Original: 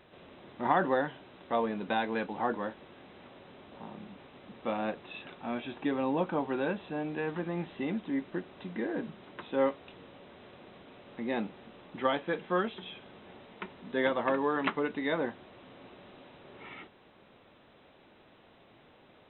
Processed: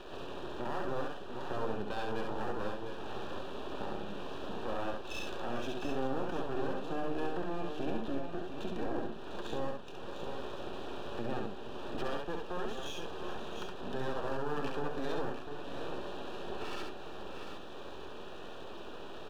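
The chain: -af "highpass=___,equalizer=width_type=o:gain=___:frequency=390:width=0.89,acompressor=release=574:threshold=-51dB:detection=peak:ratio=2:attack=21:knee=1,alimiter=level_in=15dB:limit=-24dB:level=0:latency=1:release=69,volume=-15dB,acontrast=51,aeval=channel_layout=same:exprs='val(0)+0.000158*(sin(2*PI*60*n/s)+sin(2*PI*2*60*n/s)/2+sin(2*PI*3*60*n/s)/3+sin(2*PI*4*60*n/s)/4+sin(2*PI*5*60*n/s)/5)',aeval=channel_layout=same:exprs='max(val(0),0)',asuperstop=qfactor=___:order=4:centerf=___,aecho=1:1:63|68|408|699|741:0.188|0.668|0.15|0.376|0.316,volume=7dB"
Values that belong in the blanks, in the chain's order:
270, 6.5, 3.5, 2100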